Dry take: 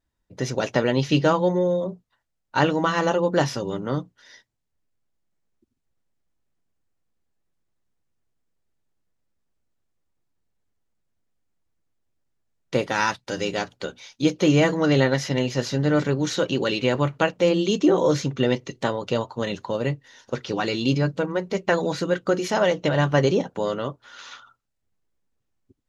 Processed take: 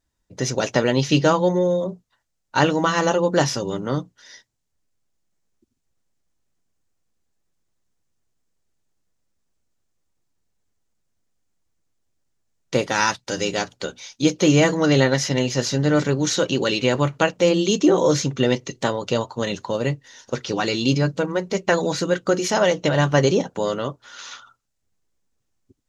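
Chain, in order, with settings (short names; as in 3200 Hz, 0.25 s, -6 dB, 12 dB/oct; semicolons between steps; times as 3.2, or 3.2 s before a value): bell 6600 Hz +7 dB 1.1 oct; gain +2 dB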